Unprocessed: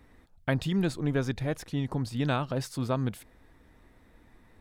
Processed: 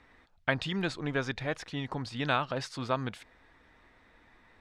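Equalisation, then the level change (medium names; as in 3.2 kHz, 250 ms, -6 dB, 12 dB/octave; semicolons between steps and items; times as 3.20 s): low-pass 5.9 kHz 12 dB/octave; tilt shelf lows -8 dB, about 640 Hz; treble shelf 3.8 kHz -8 dB; 0.0 dB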